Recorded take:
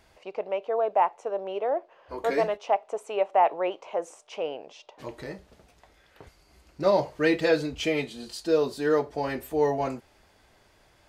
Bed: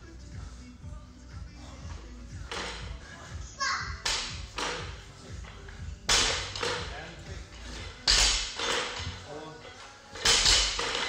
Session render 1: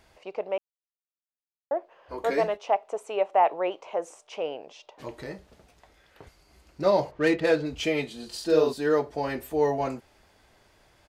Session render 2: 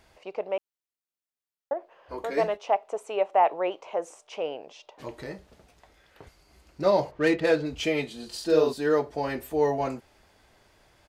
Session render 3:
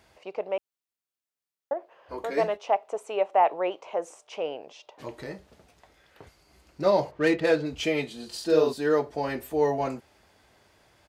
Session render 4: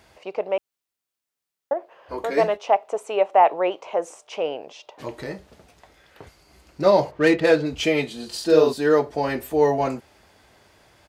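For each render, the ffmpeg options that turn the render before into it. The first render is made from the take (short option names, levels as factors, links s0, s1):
-filter_complex "[0:a]asplit=3[s0][s1][s2];[s0]afade=t=out:st=7.1:d=0.02[s3];[s1]adynamicsmooth=sensitivity=3.5:basefreq=2400,afade=t=in:st=7.1:d=0.02,afade=t=out:st=7.65:d=0.02[s4];[s2]afade=t=in:st=7.65:d=0.02[s5];[s3][s4][s5]amix=inputs=3:normalize=0,asplit=3[s6][s7][s8];[s6]afade=t=out:st=8.32:d=0.02[s9];[s7]asplit=2[s10][s11];[s11]adelay=45,volume=0.794[s12];[s10][s12]amix=inputs=2:normalize=0,afade=t=in:st=8.32:d=0.02,afade=t=out:st=8.72:d=0.02[s13];[s8]afade=t=in:st=8.72:d=0.02[s14];[s9][s13][s14]amix=inputs=3:normalize=0,asplit=3[s15][s16][s17];[s15]atrim=end=0.58,asetpts=PTS-STARTPTS,afade=t=out:st=0.576:d=0.004:c=hsin[s18];[s16]atrim=start=0.58:end=1.71,asetpts=PTS-STARTPTS,volume=0[s19];[s17]atrim=start=1.71,asetpts=PTS-STARTPTS,afade=t=in:d=0.004:c=hsin[s20];[s18][s19][s20]concat=n=3:v=0:a=1"
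-filter_complex "[0:a]asettb=1/sr,asplit=3[s0][s1][s2];[s0]atrim=end=1.734[s3];[s1]atrim=start=1.73:end=2.37,asetpts=PTS-STARTPTS,afade=t=in:d=0.004:c=qsin,afade=t=out:st=0.636:d=0.004:c=qsin,acompressor=threshold=0.0355:ratio=3:attack=3.2:release=140:knee=1:detection=peak[s4];[s2]atrim=start=2.366[s5];[s3][s4]acrossfade=d=0.004:c1=hsin:c2=qsin[s6];[s6][s5]acrossfade=d=0.004:c1=qsin:c2=hsin"
-af "highpass=60"
-af "volume=1.88"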